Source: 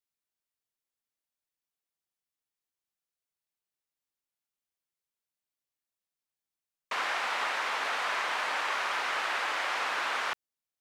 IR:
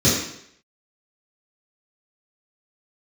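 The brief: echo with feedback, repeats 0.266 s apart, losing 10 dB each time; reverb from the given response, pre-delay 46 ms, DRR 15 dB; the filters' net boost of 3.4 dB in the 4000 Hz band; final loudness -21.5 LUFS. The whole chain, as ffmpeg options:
-filter_complex "[0:a]equalizer=f=4k:t=o:g=4.5,aecho=1:1:266|532|798|1064:0.316|0.101|0.0324|0.0104,asplit=2[a][b];[1:a]atrim=start_sample=2205,adelay=46[c];[b][c]afir=irnorm=-1:irlink=0,volume=-34dB[d];[a][d]amix=inputs=2:normalize=0,volume=7.5dB"

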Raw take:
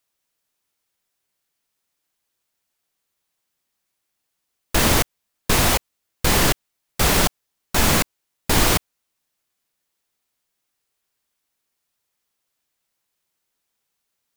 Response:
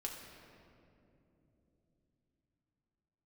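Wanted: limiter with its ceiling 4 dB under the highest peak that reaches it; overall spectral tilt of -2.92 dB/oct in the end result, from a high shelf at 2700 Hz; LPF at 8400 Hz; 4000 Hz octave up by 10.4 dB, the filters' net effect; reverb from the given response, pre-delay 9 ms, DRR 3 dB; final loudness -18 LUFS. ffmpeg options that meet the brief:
-filter_complex "[0:a]lowpass=8.4k,highshelf=f=2.7k:g=8,equalizer=f=4k:t=o:g=6.5,alimiter=limit=-3.5dB:level=0:latency=1,asplit=2[a][b];[1:a]atrim=start_sample=2205,adelay=9[c];[b][c]afir=irnorm=-1:irlink=0,volume=-2dB[d];[a][d]amix=inputs=2:normalize=0,volume=-3.5dB"

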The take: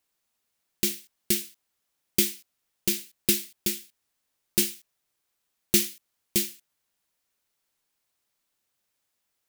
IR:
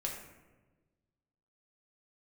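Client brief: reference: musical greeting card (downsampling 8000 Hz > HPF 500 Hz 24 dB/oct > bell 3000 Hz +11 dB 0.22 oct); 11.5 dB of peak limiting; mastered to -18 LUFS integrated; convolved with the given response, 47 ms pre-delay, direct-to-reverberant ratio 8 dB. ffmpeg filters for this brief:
-filter_complex "[0:a]alimiter=limit=-16.5dB:level=0:latency=1,asplit=2[a][b];[1:a]atrim=start_sample=2205,adelay=47[c];[b][c]afir=irnorm=-1:irlink=0,volume=-9.5dB[d];[a][d]amix=inputs=2:normalize=0,aresample=8000,aresample=44100,highpass=f=500:w=0.5412,highpass=f=500:w=1.3066,equalizer=f=3k:t=o:w=0.22:g=11,volume=20.5dB"

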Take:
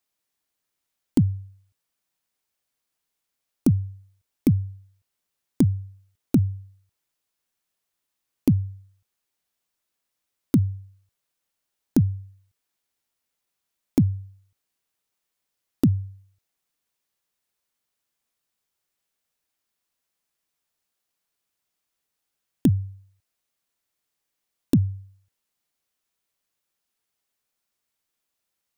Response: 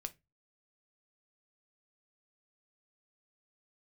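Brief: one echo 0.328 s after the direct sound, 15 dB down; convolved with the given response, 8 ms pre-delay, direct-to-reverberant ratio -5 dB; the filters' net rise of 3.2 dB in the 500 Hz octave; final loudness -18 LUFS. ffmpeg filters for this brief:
-filter_complex "[0:a]equalizer=f=500:t=o:g=5,aecho=1:1:328:0.178,asplit=2[a][b];[1:a]atrim=start_sample=2205,adelay=8[c];[b][c]afir=irnorm=-1:irlink=0,volume=8dB[d];[a][d]amix=inputs=2:normalize=0,volume=-0.5dB"

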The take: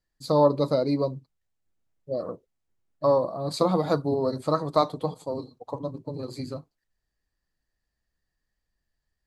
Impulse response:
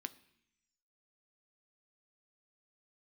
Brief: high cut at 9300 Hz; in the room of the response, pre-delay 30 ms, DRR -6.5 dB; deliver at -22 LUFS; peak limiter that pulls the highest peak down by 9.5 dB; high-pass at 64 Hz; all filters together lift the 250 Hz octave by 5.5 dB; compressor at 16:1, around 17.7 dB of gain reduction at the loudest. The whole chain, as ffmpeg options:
-filter_complex "[0:a]highpass=64,lowpass=9.3k,equalizer=f=250:t=o:g=7,acompressor=threshold=-30dB:ratio=16,alimiter=level_in=2.5dB:limit=-24dB:level=0:latency=1,volume=-2.5dB,asplit=2[a][b];[1:a]atrim=start_sample=2205,adelay=30[c];[b][c]afir=irnorm=-1:irlink=0,volume=9dB[d];[a][d]amix=inputs=2:normalize=0,volume=11dB"

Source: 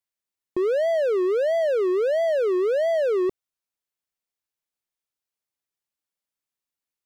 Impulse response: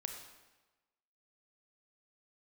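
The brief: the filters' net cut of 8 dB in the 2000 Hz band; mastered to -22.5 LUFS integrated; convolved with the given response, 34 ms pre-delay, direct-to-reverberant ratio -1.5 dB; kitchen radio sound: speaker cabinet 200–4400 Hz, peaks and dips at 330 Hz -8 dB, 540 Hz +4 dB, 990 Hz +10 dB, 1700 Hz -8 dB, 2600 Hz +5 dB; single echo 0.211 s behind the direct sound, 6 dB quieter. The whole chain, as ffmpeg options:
-filter_complex "[0:a]equalizer=f=2k:t=o:g=-6.5,aecho=1:1:211:0.501,asplit=2[a][b];[1:a]atrim=start_sample=2205,adelay=34[c];[b][c]afir=irnorm=-1:irlink=0,volume=2.5dB[d];[a][d]amix=inputs=2:normalize=0,highpass=200,equalizer=f=330:t=q:w=4:g=-8,equalizer=f=540:t=q:w=4:g=4,equalizer=f=990:t=q:w=4:g=10,equalizer=f=1.7k:t=q:w=4:g=-8,equalizer=f=2.6k:t=q:w=4:g=5,lowpass=f=4.4k:w=0.5412,lowpass=f=4.4k:w=1.3066,volume=-4.5dB"

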